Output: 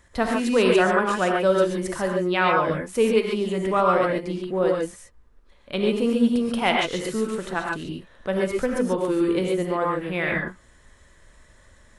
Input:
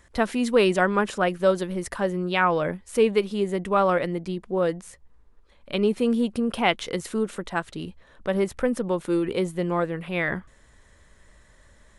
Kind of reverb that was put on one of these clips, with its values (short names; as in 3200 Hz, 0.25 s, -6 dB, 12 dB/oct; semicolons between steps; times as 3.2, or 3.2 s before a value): non-linear reverb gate 0.16 s rising, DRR -0.5 dB; gain -1 dB